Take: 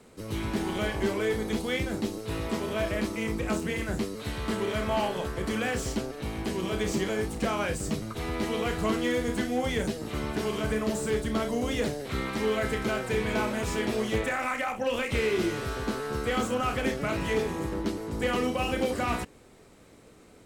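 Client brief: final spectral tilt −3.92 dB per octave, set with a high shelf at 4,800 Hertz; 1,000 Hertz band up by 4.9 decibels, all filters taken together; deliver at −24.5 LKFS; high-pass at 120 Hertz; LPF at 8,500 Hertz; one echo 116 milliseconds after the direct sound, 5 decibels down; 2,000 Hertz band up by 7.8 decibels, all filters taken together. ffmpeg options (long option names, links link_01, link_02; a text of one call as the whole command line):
ffmpeg -i in.wav -af "highpass=120,lowpass=8500,equalizer=frequency=1000:width_type=o:gain=4,equalizer=frequency=2000:width_type=o:gain=7.5,highshelf=frequency=4800:gain=5,aecho=1:1:116:0.562,volume=1dB" out.wav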